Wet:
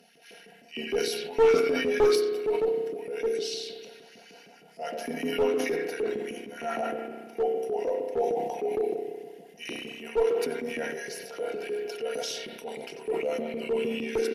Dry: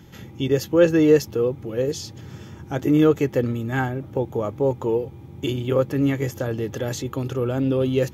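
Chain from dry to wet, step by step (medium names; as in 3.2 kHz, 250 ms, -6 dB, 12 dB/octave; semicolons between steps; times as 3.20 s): granular stretch 1.5×, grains 22 ms; static phaser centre 360 Hz, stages 6; tape speed -15%; speakerphone echo 90 ms, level -7 dB; LFO high-pass saw up 6.5 Hz 310–2500 Hz; high-pass 120 Hz; on a send at -7 dB: reverberation RT60 1.6 s, pre-delay 31 ms; on the sum: one-sided clip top -16.5 dBFS; transient shaper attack -7 dB, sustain -1 dB; decay stretcher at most 38 dB/s; trim -1.5 dB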